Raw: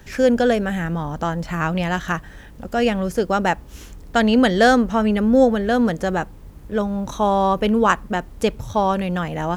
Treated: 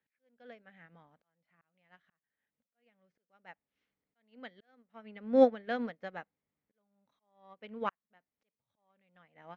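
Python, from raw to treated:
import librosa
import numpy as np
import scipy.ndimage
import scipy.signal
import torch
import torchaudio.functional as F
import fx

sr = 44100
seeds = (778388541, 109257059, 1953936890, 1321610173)

y = fx.cheby_harmonics(x, sr, harmonics=(4,), levels_db=(-34,), full_scale_db=-1.5)
y = fx.cabinet(y, sr, low_hz=230.0, low_slope=12, high_hz=4300.0, hz=(350.0, 950.0, 2100.0), db=(-8, -3, 9))
y = fx.auto_swell(y, sr, attack_ms=785.0)
y = fx.upward_expand(y, sr, threshold_db=-34.0, expansion=2.5)
y = y * librosa.db_to_amplitude(-5.0)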